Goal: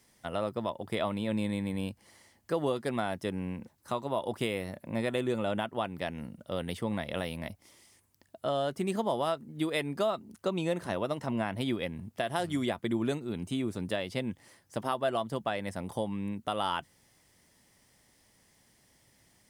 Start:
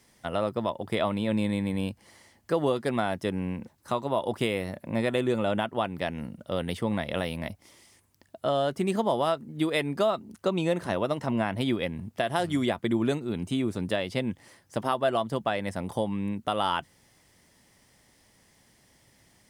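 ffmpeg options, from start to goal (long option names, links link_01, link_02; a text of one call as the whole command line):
ffmpeg -i in.wav -af "highshelf=frequency=7300:gain=4,volume=-4.5dB" out.wav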